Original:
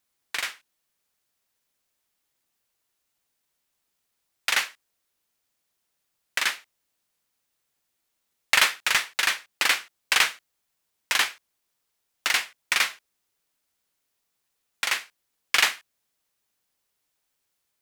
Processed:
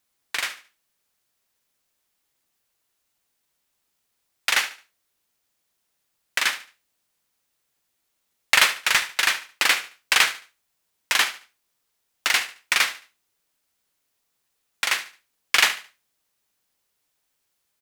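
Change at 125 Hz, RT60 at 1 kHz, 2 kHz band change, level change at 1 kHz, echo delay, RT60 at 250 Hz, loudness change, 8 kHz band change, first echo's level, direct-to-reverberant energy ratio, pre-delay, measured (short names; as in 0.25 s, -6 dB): n/a, none, +2.5 dB, +2.5 dB, 73 ms, none, +2.5 dB, +2.5 dB, -15.0 dB, none, none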